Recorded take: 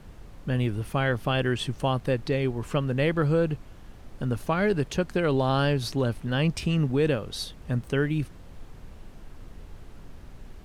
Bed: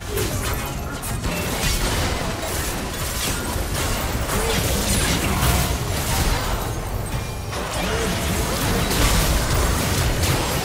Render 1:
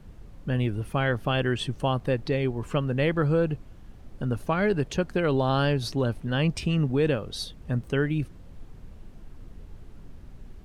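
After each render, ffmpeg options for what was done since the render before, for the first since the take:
-af "afftdn=nr=6:nf=-47"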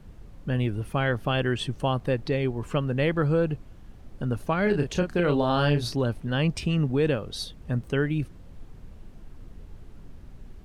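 -filter_complex "[0:a]asettb=1/sr,asplit=3[s0][s1][s2];[s0]atrim=end=4.634[s3];[s1]atrim=start=4.63:end=5.96,asetpts=PTS-STARTPTS,afade=t=in:d=0.004:c=qsin,afade=t=out:st=1.326:d=0.004:c=qsin,asplit=2[s4][s5];[s5]adelay=34,volume=0.501[s6];[s4][s6]amix=inputs=2:normalize=0,atrim=end_sample=58653[s7];[s2]atrim=start=5.956[s8];[s3][s7]acrossfade=d=0.004:c1=hsin:c2=qsin[s9];[s9][s8]acrossfade=d=0.004:c1=qsin:c2=hsin"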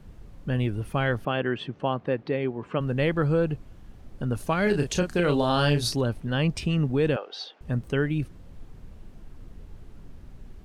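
-filter_complex "[0:a]asplit=3[s0][s1][s2];[s0]afade=t=out:st=1.24:d=0.02[s3];[s1]highpass=170,lowpass=2700,afade=t=in:st=1.24:d=0.02,afade=t=out:st=2.79:d=0.02[s4];[s2]afade=t=in:st=2.79:d=0.02[s5];[s3][s4][s5]amix=inputs=3:normalize=0,asettb=1/sr,asplit=3[s6][s7][s8];[s6]atrim=end=4.354[s9];[s7]atrim=start=4.35:end=6.01,asetpts=PTS-STARTPTS,afade=t=in:d=0.004:c=qsin,afade=t=out:st=1.656:d=0.004:c=qsin,equalizer=f=9200:t=o:w=2.1:g=9[s10];[s8]atrim=start=6.006[s11];[s9][s10]acrossfade=d=0.004:c1=hsin:c2=qsin[s12];[s12][s11]acrossfade=d=0.004:c1=qsin:c2=hsin,asettb=1/sr,asplit=3[s13][s14][s15];[s13]atrim=end=7.164[s16];[s14]atrim=start=7.16:end=7.61,asetpts=PTS-STARTPTS,afade=t=in:d=0.004:c=qsin,afade=t=out:st=0.446:d=0.004:c=qsin,highpass=f=390:w=0.5412,highpass=f=390:w=1.3066,equalizer=f=790:t=q:w=4:g=10,equalizer=f=1500:t=q:w=4:g=7,equalizer=f=2800:t=q:w=4:g=5,equalizer=f=4000:t=q:w=4:g=-3,lowpass=f=4900:w=0.5412,lowpass=f=4900:w=1.3066[s17];[s15]atrim=start=7.606[s18];[s16][s17]acrossfade=d=0.004:c1=hsin:c2=qsin[s19];[s19][s18]acrossfade=d=0.004:c1=qsin:c2=hsin"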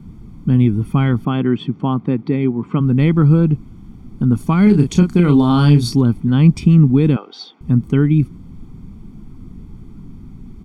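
-af "equalizer=f=220:w=0.67:g=14,aecho=1:1:0.9:0.71"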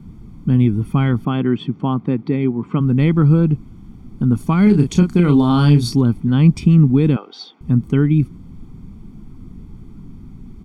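-af "volume=0.891"

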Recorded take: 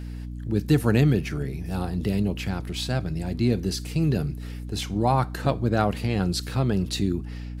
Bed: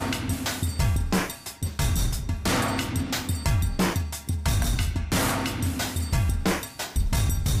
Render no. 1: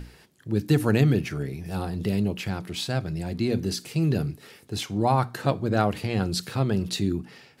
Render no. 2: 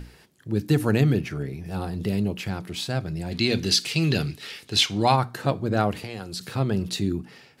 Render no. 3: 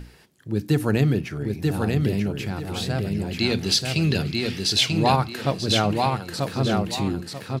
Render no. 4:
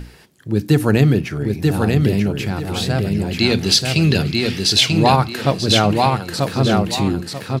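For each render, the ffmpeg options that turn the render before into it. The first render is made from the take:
-af "bandreject=f=60:t=h:w=6,bandreject=f=120:t=h:w=6,bandreject=f=180:t=h:w=6,bandreject=f=240:t=h:w=6,bandreject=f=300:t=h:w=6"
-filter_complex "[0:a]asettb=1/sr,asplit=3[s0][s1][s2];[s0]atrim=end=1.184[s3];[s1]atrim=start=1.18:end=1.82,asetpts=PTS-STARTPTS,afade=t=in:d=0.004:c=qsin,afade=t=out:st=0.636:d=0.004:c=qsin,highshelf=f=4700:g=-5[s4];[s2]atrim=start=1.816[s5];[s3][s4]acrossfade=d=0.004:c1=hsin:c2=qsin[s6];[s6][s5]acrossfade=d=0.004:c1=qsin:c2=hsin,asplit=3[s7][s8][s9];[s7]afade=t=out:st=3.31:d=0.02[s10];[s8]equalizer=f=3500:w=0.51:g=14.5,afade=t=in:st=3.31:d=0.02,afade=t=out:st=5.15:d=0.02[s11];[s9]afade=t=in:st=5.15:d=0.02[s12];[s10][s11][s12]amix=inputs=3:normalize=0,asettb=1/sr,asplit=3[s13][s14][s15];[s13]atrim=end=5.974[s16];[s14]atrim=start=5.97:end=6.41,asetpts=PTS-STARTPTS,afade=t=in:d=0.004:c=qsin,afade=t=out:st=0.436:d=0.004:c=qsin,acrossover=split=410|4700[s17][s18][s19];[s17]acompressor=threshold=0.0126:ratio=4[s20];[s18]acompressor=threshold=0.0158:ratio=4[s21];[s19]acompressor=threshold=0.0126:ratio=4[s22];[s20][s21][s22]amix=inputs=3:normalize=0[s23];[s15]atrim=start=6.406[s24];[s16][s23]acrossfade=d=0.004:c1=hsin:c2=qsin[s25];[s25][s24]acrossfade=d=0.004:c1=qsin:c2=hsin"
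-af "aecho=1:1:938|1876|2814|3752:0.708|0.205|0.0595|0.0173"
-af "volume=2.11,alimiter=limit=0.891:level=0:latency=1"

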